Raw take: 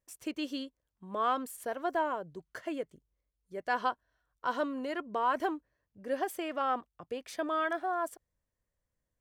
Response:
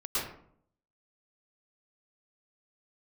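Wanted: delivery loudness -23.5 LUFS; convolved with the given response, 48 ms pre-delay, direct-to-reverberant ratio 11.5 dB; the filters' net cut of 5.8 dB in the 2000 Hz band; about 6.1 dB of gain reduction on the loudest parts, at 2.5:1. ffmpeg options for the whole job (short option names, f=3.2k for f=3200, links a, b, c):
-filter_complex "[0:a]equalizer=f=2k:t=o:g=-8.5,acompressor=threshold=-36dB:ratio=2.5,asplit=2[a][b];[1:a]atrim=start_sample=2205,adelay=48[c];[b][c]afir=irnorm=-1:irlink=0,volume=-18.5dB[d];[a][d]amix=inputs=2:normalize=0,volume=17dB"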